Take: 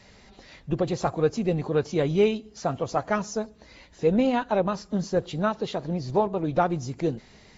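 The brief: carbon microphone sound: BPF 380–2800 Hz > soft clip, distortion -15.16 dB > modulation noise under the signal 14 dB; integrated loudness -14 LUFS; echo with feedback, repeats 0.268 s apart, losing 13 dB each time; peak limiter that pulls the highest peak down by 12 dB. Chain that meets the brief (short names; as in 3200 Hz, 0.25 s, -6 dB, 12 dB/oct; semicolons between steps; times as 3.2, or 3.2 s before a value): limiter -21.5 dBFS; BPF 380–2800 Hz; feedback echo 0.268 s, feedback 22%, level -13 dB; soft clip -27 dBFS; modulation noise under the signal 14 dB; gain +23 dB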